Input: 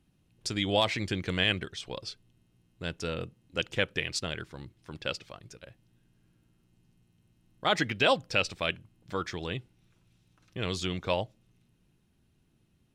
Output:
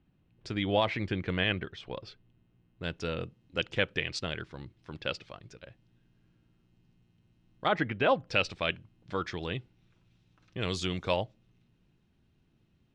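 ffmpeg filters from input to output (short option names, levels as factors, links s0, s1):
-af "asetnsamples=n=441:p=0,asendcmd='2.83 lowpass f 4600;7.68 lowpass f 1900;8.27 lowpass f 4700;10.61 lowpass f 9000;11.16 lowpass f 4600',lowpass=2600"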